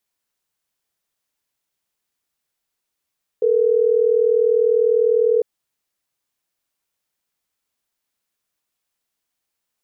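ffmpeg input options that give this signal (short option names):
-f lavfi -i "aevalsrc='0.158*(sin(2*PI*440*t)+sin(2*PI*480*t))*clip(min(mod(t,6),2-mod(t,6))/0.005,0,1)':d=3.12:s=44100"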